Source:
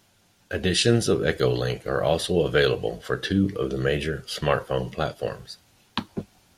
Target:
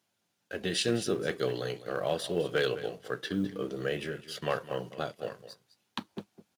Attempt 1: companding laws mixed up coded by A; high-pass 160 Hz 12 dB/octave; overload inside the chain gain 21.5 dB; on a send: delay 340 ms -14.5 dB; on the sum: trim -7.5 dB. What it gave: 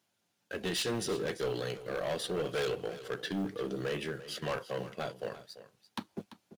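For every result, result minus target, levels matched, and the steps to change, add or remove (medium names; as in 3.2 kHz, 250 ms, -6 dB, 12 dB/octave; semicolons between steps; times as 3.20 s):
echo 132 ms late; overload inside the chain: distortion +18 dB
change: delay 208 ms -14.5 dB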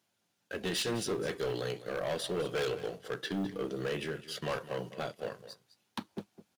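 overload inside the chain: distortion +18 dB
change: overload inside the chain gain 11.5 dB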